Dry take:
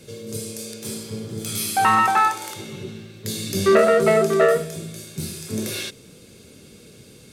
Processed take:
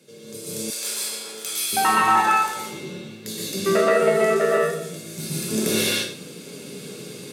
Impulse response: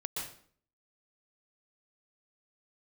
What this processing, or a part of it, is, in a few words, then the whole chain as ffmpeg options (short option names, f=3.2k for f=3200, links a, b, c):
far laptop microphone: -filter_complex "[1:a]atrim=start_sample=2205[a];[0:a][a]afir=irnorm=-1:irlink=0,highpass=f=160:w=0.5412,highpass=f=160:w=1.3066,dynaudnorm=f=430:g=3:m=15dB,asettb=1/sr,asplit=3[b][c][d];[b]atrim=end=0.704[e];[c]atrim=start=0.7:end=1.73,asetpts=PTS-STARTPTS,afade=t=in:d=0.004:c=qsin,afade=t=out:st=1.026:d=0.004:c=qsin,highpass=870[f];[d]atrim=start=1.726[g];[e][f]acrossfade=d=0.004:c1=hsin:c2=qsin[h];[h][g]acrossfade=d=0.004:c1=qsin:c2=hsin,volume=-6dB"